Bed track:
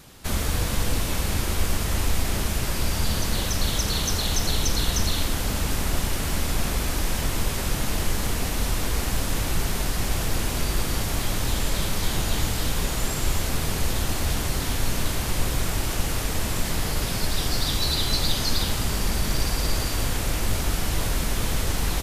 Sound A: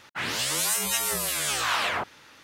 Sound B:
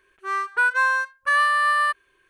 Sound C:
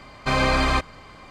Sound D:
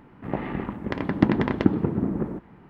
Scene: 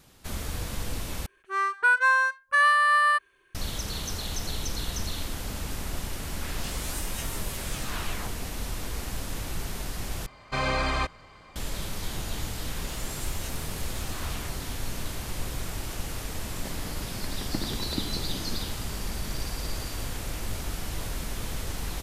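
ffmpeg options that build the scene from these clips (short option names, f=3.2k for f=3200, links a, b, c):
-filter_complex "[1:a]asplit=2[a][b];[0:a]volume=-8.5dB[c];[3:a]equalizer=f=250:t=o:w=0.77:g=-4[d];[c]asplit=3[e][f][g];[e]atrim=end=1.264[h];[2:a]atrim=end=2.29,asetpts=PTS-STARTPTS,volume=-1dB[i];[f]atrim=start=3.546:end=10.264[j];[d]atrim=end=1.3,asetpts=PTS-STARTPTS,volume=-6dB[k];[g]atrim=start=11.556[l];[a]atrim=end=2.43,asetpts=PTS-STARTPTS,volume=-12.5dB,afade=t=in:d=0.004:c=hsin,afade=t=out:st=2.426:d=0.004:c=hsin,adelay=6250[m];[b]atrim=end=2.43,asetpts=PTS-STARTPTS,volume=-17.5dB,afade=t=in:d=0.004:c=hsin,afade=t=out:st=2.426:d=0.004:c=hsin,adelay=12510[n];[4:a]atrim=end=2.69,asetpts=PTS-STARTPTS,volume=-14.5dB,afade=t=in:d=0.004:c=hsin,afade=t=out:st=2.686:d=0.004:c=hsin,adelay=16320[o];[h][i]acrossfade=d=0.004:c1=hsin:c2=hsin[p];[p][j]acrossfade=d=0.004:c1=hsin:c2=hsin[q];[q][k]acrossfade=d=0.004:c1=hsin:c2=hsin[r];[r][l]acrossfade=d=0.004:c1=hsin:c2=hsin[s];[s][m][n][o]amix=inputs=4:normalize=0"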